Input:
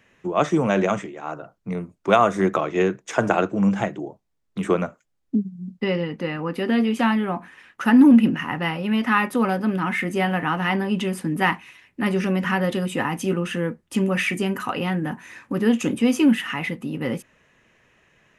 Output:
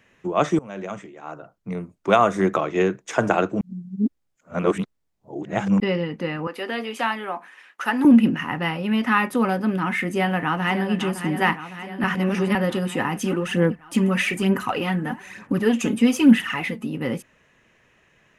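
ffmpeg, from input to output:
-filter_complex "[0:a]asettb=1/sr,asplit=3[s0][s1][s2];[s0]atrim=end=6.474[s3];[s1]atrim=start=6.47:end=8.05,asetpts=PTS-STARTPTS,afade=t=in:d=0.004:c=qsin,afade=t=out:st=1.576:d=0.004:c=qsin,highpass=500[s4];[s2]atrim=start=8.046[s5];[s3][s4]acrossfade=d=0.004:c1=hsin:c2=qsin[s6];[s6][s5]acrossfade=d=0.004:c1=qsin:c2=hsin,asplit=2[s7][s8];[s8]afade=t=in:st=10.1:d=0.01,afade=t=out:st=10.95:d=0.01,aecho=0:1:560|1120|1680|2240|2800|3360|3920|4480|5040|5600:0.316228|0.221359|0.154952|0.108466|0.0759263|0.0531484|0.0372039|0.0260427|0.0182299|0.0127609[s9];[s7][s9]amix=inputs=2:normalize=0,asplit=3[s10][s11][s12];[s10]afade=t=out:st=13.19:d=0.02[s13];[s11]aphaser=in_gain=1:out_gain=1:delay=4.7:decay=0.52:speed=1.1:type=sinusoidal,afade=t=in:st=13.19:d=0.02,afade=t=out:st=16.87:d=0.02[s14];[s12]afade=t=in:st=16.87:d=0.02[s15];[s13][s14][s15]amix=inputs=3:normalize=0,asplit=6[s16][s17][s18][s19][s20][s21];[s16]atrim=end=0.59,asetpts=PTS-STARTPTS,afade=t=out:st=0.586:d=0.004:c=hsin:silence=0.0749894[s22];[s17]atrim=start=0.59:end=3.612,asetpts=PTS-STARTPTS,afade=t=in:d=1.85:c=qsin:silence=0.0749894[s23];[s18]atrim=start=3.608:end=5.802,asetpts=PTS-STARTPTS,areverse[s24];[s19]atrim=start=5.798:end=12.042[s25];[s20]atrim=start=12.038:end=12.552,asetpts=PTS-STARTPTS,areverse[s26];[s21]atrim=start=12.548[s27];[s22][s23]concat=n=2:v=0:a=1[s28];[s28][s24]acrossfade=d=0.004:c1=hsin:c2=hsin[s29];[s29][s25]acrossfade=d=0.004:c1=hsin:c2=hsin[s30];[s30][s26]acrossfade=d=0.004:c1=hsin:c2=hsin[s31];[s31][s27]acrossfade=d=0.004:c1=hsin:c2=hsin"

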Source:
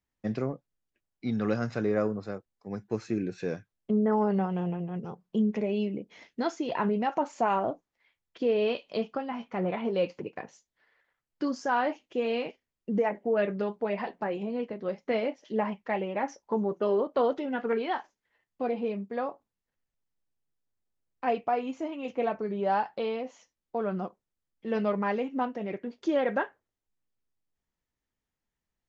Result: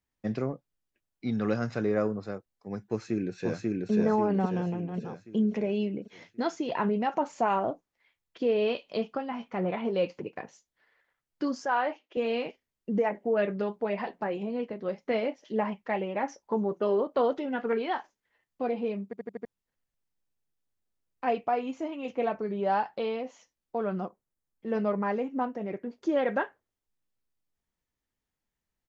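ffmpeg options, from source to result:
-filter_complex "[0:a]asplit=2[s0][s1];[s1]afade=t=in:st=2.86:d=0.01,afade=t=out:st=3.91:d=0.01,aecho=0:1:540|1080|1620|2160|2700|3240|3780:0.944061|0.47203|0.236015|0.118008|0.0590038|0.0295019|0.014751[s2];[s0][s2]amix=inputs=2:normalize=0,asettb=1/sr,asplit=3[s3][s4][s5];[s3]atrim=end=11.654[s6];[s4]atrim=start=11.65:end=12.17,asetpts=PTS-STARTPTS,afade=t=in:d=0.004:c=qsin,afade=t=out:st=0.516:d=0.004:c=qsin,highpass=390,lowpass=3800[s7];[s5]atrim=start=12.166[s8];[s6][s7]acrossfade=d=0.004:c1=hsin:c2=qsin[s9];[s9][s8]acrossfade=d=0.004:c1=qsin:c2=hsin,asettb=1/sr,asplit=3[s10][s11][s12];[s10]atrim=end=24.054[s13];[s11]atrim=start=24.05:end=26.17,asetpts=PTS-STARTPTS,afade=t=in:d=0.004:c=qsin,afade=t=out:st=2.116:d=0.004:c=qsin,equalizer=f=3300:t=o:w=1.3:g=-7.5[s14];[s12]atrim=start=26.166[s15];[s13][s14]acrossfade=d=0.004:c1=hsin:c2=qsin[s16];[s16][s15]acrossfade=d=0.004:c1=qsin:c2=hsin,asplit=6[s17][s18][s19][s20][s21][s22];[s17]atrim=end=19.132[s23];[s18]atrim=start=19.048:end=19.132[s24];[s19]atrim=start=19.048:end=19.132[s25];[s20]atrim=start=19.048:end=19.132[s26];[s21]atrim=start=19.048:end=19.132[s27];[s22]atrim=start=19.448[s28];[s23][s24]acrossfade=d=0.004:c1=hsin:c2=hsin[s29];[s29][s25]acrossfade=d=0.004:c1=hsin:c2=hsin[s30];[s30][s26]acrossfade=d=0.004:c1=hsin:c2=hsin[s31];[s31][s27]acrossfade=d=0.004:c1=hsin:c2=hsin[s32];[s32][s28]acrossfade=d=0.004:c1=hsin:c2=hsin"

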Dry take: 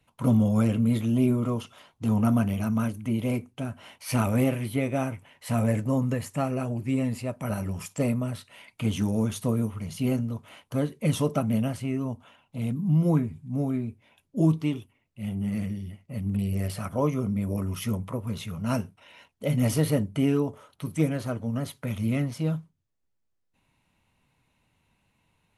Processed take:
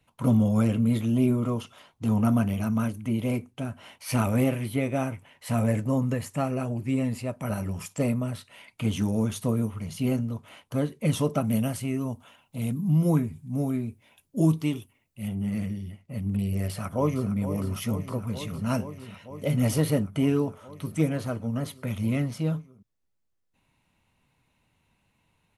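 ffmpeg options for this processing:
-filter_complex "[0:a]asettb=1/sr,asplit=3[s0][s1][s2];[s0]atrim=end=11.444[s3];[s1]atrim=start=11.44:end=15.28,asetpts=PTS-STARTPTS,afade=t=in:d=0.004:c=qsin,afade=t=out:st=3.836:d=0.004:c=qsin,highshelf=f=6400:g=11.5[s4];[s2]atrim=start=15.276[s5];[s3][s4]acrossfade=d=0.004:c1=hsin:c2=qsin[s6];[s6][s5]acrossfade=d=0.004:c1=qsin:c2=hsin,asplit=2[s7][s8];[s8]afade=t=in:st=16.54:d=0.01,afade=t=out:st=17.3:d=0.01,aecho=0:1:460|920|1380|1840|2300|2760|3220|3680|4140|4600|5060|5520:0.266073|0.226162|0.192237|0.163402|0.138892|0.118058|0.100349|0.0852967|0.0725022|0.0616269|0.0523829|0.0445254[s9];[s7][s9]amix=inputs=2:normalize=0"

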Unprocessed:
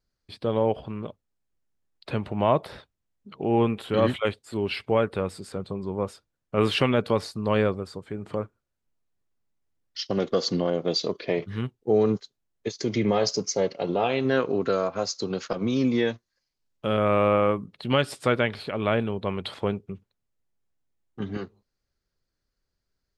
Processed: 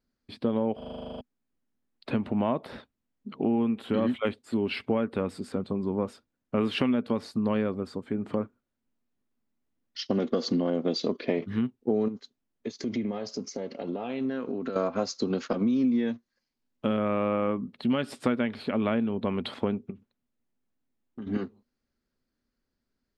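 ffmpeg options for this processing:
-filter_complex "[0:a]asettb=1/sr,asplit=3[s0][s1][s2];[s0]atrim=end=12.084[s3];[s1]atrim=start=12.08:end=14.76,asetpts=PTS-STARTPTS,afade=t=in:d=0.004:c=qsin,afade=t=out:st=2.676:d=0.004:c=qsin,acompressor=threshold=0.0251:ratio=6:attack=3.2:release=140:knee=1:detection=peak[s4];[s2]atrim=start=14.756[s5];[s3][s4]acrossfade=d=0.004:c1=hsin:c2=qsin[s6];[s6][s5]acrossfade=d=0.004:c1=qsin:c2=hsin,asettb=1/sr,asplit=3[s7][s8][s9];[s7]atrim=end=19.904[s10];[s8]atrim=start=19.9:end=21.27,asetpts=PTS-STARTPTS,afade=t=in:d=0.004:c=qsin,afade=t=out:st=1.366:d=0.004:c=qsin,acompressor=threshold=0.00891:ratio=6:attack=3.2:release=140:knee=1:detection=peak[s11];[s9]atrim=start=21.266[s12];[s10][s11]acrossfade=d=0.004:c1=hsin:c2=qsin[s13];[s13][s12]acrossfade=d=0.004:c1=qsin:c2=hsin,asplit=12[s14][s15][s16][s17][s18][s19][s20][s21][s22][s23][s24][s25];[s14]atrim=end=0.812[s26];[s15]atrim=start=0.768:end=0.812[s27];[s16]atrim=start=0.768:end=0.812[s28];[s17]atrim=start=0.768:end=0.812[s29];[s18]atrim=start=0.768:end=0.812[s30];[s19]atrim=start=0.768:end=0.812[s31];[s20]atrim=start=0.768:end=0.812[s32];[s21]atrim=start=0.768:end=0.812[s33];[s22]atrim=start=0.768:end=0.812[s34];[s23]atrim=start=0.768:end=0.812[s35];[s24]atrim=start=0.768:end=0.812[s36];[s25]atrim=start=1.208[s37];[s26][s27]acrossfade=d=0.004:c1=hsin:c2=hsin[s38];[s38][s28]acrossfade=d=0.004:c1=hsin:c2=hsin[s39];[s39][s29]acrossfade=d=0.004:c1=hsin:c2=hsin[s40];[s40][s30]acrossfade=d=0.004:c1=hsin:c2=hsin[s41];[s41][s31]acrossfade=d=0.004:c1=hsin:c2=hsin[s42];[s42][s32]acrossfade=d=0.004:c1=hsin:c2=hsin[s43];[s43][s33]acrossfade=d=0.004:c1=hsin:c2=hsin[s44];[s44][s34]acrossfade=d=0.004:c1=hsin:c2=hsin[s45];[s45][s35]acrossfade=d=0.004:c1=hsin:c2=hsin[s46];[s46][s36]acrossfade=d=0.004:c1=hsin:c2=hsin[s47];[s47][s37]acrossfade=d=0.004:c1=hsin:c2=hsin,equalizer=f=240:w=2.6:g=15,acompressor=threshold=0.0891:ratio=6,bass=f=250:g=-4,treble=f=4000:g=-6"

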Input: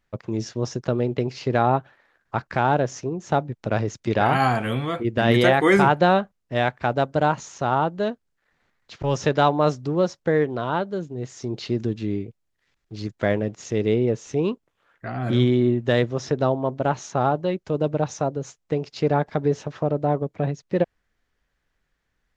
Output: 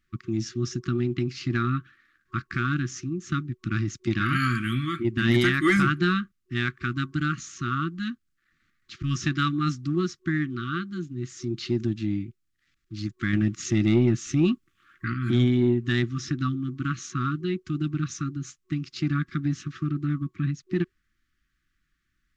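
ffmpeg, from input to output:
-filter_complex "[0:a]asettb=1/sr,asplit=3[s0][s1][s2];[s0]atrim=end=13.334[s3];[s1]atrim=start=13.33:end=15.14,asetpts=PTS-STARTPTS,afade=t=in:d=0.004:c=qsin,afade=t=out:st=1.806:d=0.004:c=qsin,acontrast=43[s4];[s2]atrim=start=15.136[s5];[s3][s4]acrossfade=d=0.004:c1=hsin:c2=qsin[s6];[s6][s5]acrossfade=d=0.004:c1=qsin:c2=hsin,afftfilt=real='re*(1-between(b*sr/4096,370,1100))':imag='im*(1-between(b*sr/4096,370,1100))':win_size=4096:overlap=0.75,acontrast=83,volume=0.422"

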